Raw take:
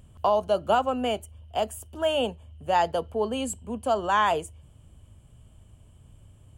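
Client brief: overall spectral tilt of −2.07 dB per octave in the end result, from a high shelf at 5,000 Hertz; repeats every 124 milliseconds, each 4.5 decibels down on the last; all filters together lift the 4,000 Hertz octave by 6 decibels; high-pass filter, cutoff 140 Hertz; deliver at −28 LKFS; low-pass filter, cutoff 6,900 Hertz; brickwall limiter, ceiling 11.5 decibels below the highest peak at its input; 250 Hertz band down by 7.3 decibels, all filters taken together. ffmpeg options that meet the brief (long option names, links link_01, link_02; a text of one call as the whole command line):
ffmpeg -i in.wav -af "highpass=140,lowpass=6900,equalizer=frequency=250:width_type=o:gain=-8,equalizer=frequency=4000:width_type=o:gain=7,highshelf=frequency=5000:gain=6.5,alimiter=limit=-21.5dB:level=0:latency=1,aecho=1:1:124|248|372|496|620|744|868|992|1116:0.596|0.357|0.214|0.129|0.0772|0.0463|0.0278|0.0167|0.01,volume=3dB" out.wav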